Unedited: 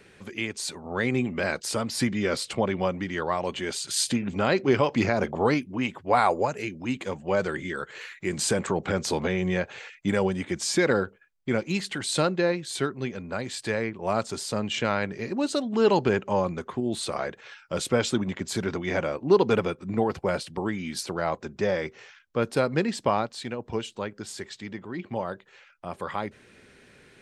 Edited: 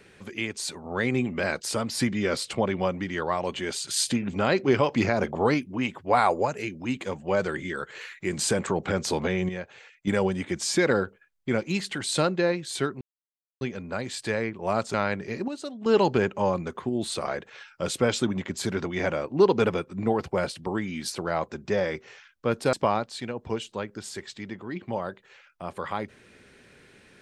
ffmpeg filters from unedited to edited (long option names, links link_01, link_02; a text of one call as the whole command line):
ffmpeg -i in.wav -filter_complex "[0:a]asplit=8[link_01][link_02][link_03][link_04][link_05][link_06][link_07][link_08];[link_01]atrim=end=9.492[link_09];[link_02]atrim=start=9.488:end=10.072,asetpts=PTS-STARTPTS,volume=-8dB[link_10];[link_03]atrim=start=10.068:end=13.01,asetpts=PTS-STARTPTS,afade=type=out:start_time=2.938:duration=0.004:curve=hsin,apad=pad_dur=0.6[link_11];[link_04]atrim=start=13.01:end=14.342,asetpts=PTS-STARTPTS,afade=type=in:duration=0.004:curve=hsin[link_12];[link_05]atrim=start=14.848:end=15.392[link_13];[link_06]atrim=start=15.388:end=15.772,asetpts=PTS-STARTPTS,volume=-9dB[link_14];[link_07]atrim=start=15.768:end=22.642[link_15];[link_08]atrim=start=22.958[link_16];[link_09][link_10]acrossfade=duration=0.004:curve1=hsin:curve2=hsin[link_17];[link_11][link_12]concat=n=2:v=0:a=1[link_18];[link_17][link_18]acrossfade=duration=0.004:curve1=hsin:curve2=hsin[link_19];[link_19][link_13]acrossfade=duration=0.004:curve1=hsin:curve2=hsin[link_20];[link_20][link_14]acrossfade=duration=0.004:curve1=hsin:curve2=hsin[link_21];[link_21][link_15]acrossfade=duration=0.004:curve1=hsin:curve2=hsin[link_22];[link_22][link_16]acrossfade=duration=0.004:curve1=hsin:curve2=hsin" out.wav